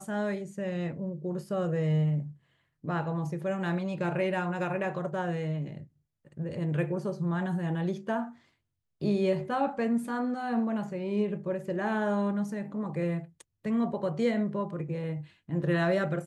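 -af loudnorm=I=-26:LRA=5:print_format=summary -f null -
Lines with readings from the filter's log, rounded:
Input Integrated:    -31.0 LUFS
Input True Peak:     -15.6 dBTP
Input LRA:             1.9 LU
Input Threshold:     -41.3 LUFS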